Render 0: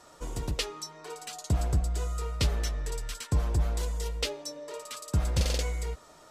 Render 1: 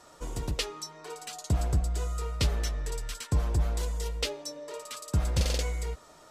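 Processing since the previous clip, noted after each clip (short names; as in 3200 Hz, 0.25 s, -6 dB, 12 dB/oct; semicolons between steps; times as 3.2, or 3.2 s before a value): nothing audible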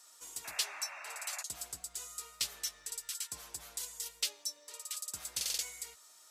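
differentiator; painted sound noise, 0.44–1.43, 550–2800 Hz -50 dBFS; bell 550 Hz -3.5 dB 0.41 oct; gain +3 dB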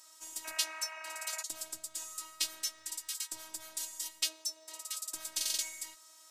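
robotiser 317 Hz; gain +4 dB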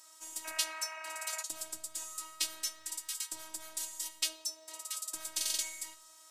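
shoebox room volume 2400 m³, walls furnished, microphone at 0.63 m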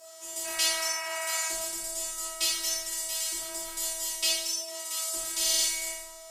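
frequency shift +18 Hz; whine 650 Hz -60 dBFS; plate-style reverb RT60 1 s, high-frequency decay 0.9×, DRR -8 dB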